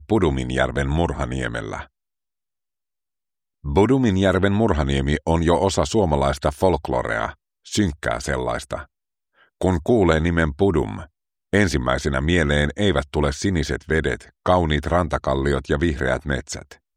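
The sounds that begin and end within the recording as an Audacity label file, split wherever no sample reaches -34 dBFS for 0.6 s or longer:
3.640000	8.830000	sound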